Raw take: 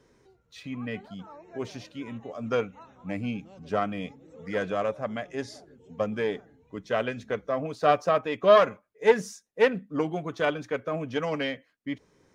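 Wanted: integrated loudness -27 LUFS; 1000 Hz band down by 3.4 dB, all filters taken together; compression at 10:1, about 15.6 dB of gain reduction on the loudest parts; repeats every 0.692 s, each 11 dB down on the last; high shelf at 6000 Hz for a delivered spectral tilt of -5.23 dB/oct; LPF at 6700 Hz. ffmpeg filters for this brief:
-af "lowpass=6.7k,equalizer=f=1k:t=o:g=-4.5,highshelf=f=6k:g=-7.5,acompressor=threshold=-30dB:ratio=10,aecho=1:1:692|1384|2076:0.282|0.0789|0.0221,volume=10dB"

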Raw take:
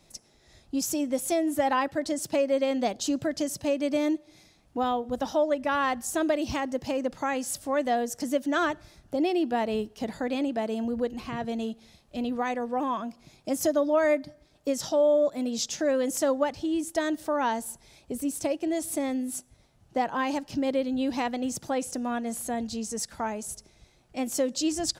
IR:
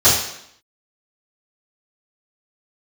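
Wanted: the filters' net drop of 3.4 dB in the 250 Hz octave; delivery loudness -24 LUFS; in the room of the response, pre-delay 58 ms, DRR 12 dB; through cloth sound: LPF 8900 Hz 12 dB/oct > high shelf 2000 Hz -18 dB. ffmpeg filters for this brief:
-filter_complex "[0:a]equalizer=f=250:t=o:g=-3.5,asplit=2[a][b];[1:a]atrim=start_sample=2205,adelay=58[c];[b][c]afir=irnorm=-1:irlink=0,volume=-35dB[d];[a][d]amix=inputs=2:normalize=0,lowpass=8.9k,highshelf=f=2k:g=-18,volume=7.5dB"

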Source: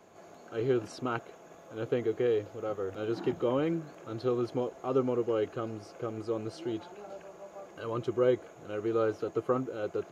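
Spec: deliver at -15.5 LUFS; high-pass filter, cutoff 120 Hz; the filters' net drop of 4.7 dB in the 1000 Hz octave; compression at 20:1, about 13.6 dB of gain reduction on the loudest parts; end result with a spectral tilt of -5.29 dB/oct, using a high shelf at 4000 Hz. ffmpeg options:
-af "highpass=120,equalizer=f=1k:t=o:g=-6,highshelf=f=4k:g=-5.5,acompressor=threshold=-36dB:ratio=20,volume=27dB"

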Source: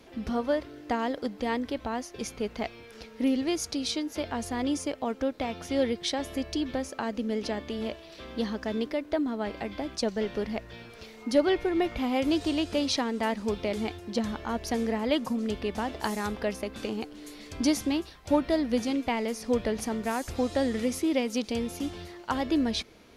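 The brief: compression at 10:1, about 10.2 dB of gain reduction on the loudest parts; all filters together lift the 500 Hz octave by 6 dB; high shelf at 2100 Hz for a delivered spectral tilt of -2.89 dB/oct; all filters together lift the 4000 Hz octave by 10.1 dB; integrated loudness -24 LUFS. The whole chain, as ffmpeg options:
-af "equalizer=f=500:t=o:g=6.5,highshelf=f=2.1k:g=9,equalizer=f=4k:t=o:g=4,acompressor=threshold=-22dB:ratio=10,volume=4.5dB"

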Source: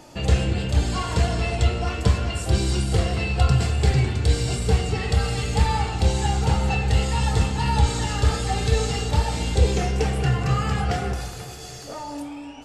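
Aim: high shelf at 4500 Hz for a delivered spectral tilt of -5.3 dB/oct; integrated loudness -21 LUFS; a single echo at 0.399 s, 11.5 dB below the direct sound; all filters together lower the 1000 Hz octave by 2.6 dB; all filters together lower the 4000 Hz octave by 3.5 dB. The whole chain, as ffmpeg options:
-af "equalizer=f=1k:t=o:g=-3.5,equalizer=f=4k:t=o:g=-8.5,highshelf=f=4.5k:g=7,aecho=1:1:399:0.266,volume=2dB"

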